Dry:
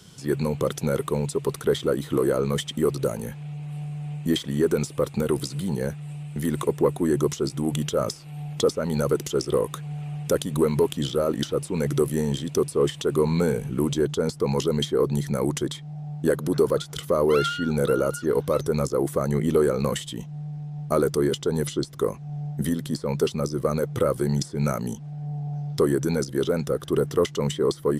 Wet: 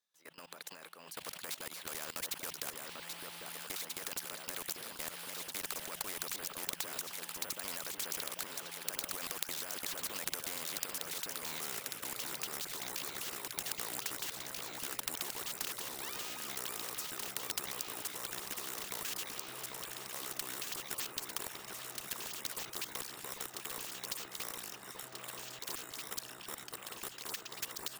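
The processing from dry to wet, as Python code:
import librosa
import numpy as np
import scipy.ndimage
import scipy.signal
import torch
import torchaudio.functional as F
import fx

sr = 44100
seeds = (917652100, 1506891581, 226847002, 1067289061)

p1 = fx.doppler_pass(x, sr, speed_mps=47, closest_m=5.6, pass_at_s=11.49)
p2 = fx.recorder_agc(p1, sr, target_db=-16.5, rise_db_per_s=26.0, max_gain_db=30)
p3 = scipy.signal.sosfilt(scipy.signal.butter(2, 920.0, 'highpass', fs=sr, output='sos'), p2)
p4 = fx.high_shelf(p3, sr, hz=7300.0, db=-6.5)
p5 = fx.level_steps(p4, sr, step_db=23)
p6 = fx.tremolo_random(p5, sr, seeds[0], hz=3.5, depth_pct=55)
p7 = p6 + fx.echo_alternate(p6, sr, ms=793, hz=1400.0, feedback_pct=75, wet_db=-9.0, dry=0)
p8 = np.repeat(p7[::2], 2)[:len(p7)]
p9 = fx.spectral_comp(p8, sr, ratio=4.0)
y = p9 * 10.0 ** (13.0 / 20.0)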